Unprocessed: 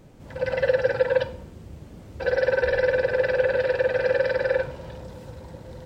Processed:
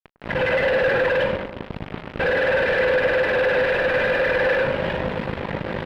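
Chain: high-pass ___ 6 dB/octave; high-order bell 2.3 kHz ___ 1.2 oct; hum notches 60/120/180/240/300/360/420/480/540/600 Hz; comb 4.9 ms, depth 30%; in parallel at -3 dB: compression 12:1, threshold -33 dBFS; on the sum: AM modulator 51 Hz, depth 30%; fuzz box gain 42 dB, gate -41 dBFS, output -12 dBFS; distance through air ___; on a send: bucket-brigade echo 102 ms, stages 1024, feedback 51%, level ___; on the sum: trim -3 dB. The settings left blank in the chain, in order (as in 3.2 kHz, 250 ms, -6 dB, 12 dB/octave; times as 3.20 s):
220 Hz, +9.5 dB, 430 m, -11 dB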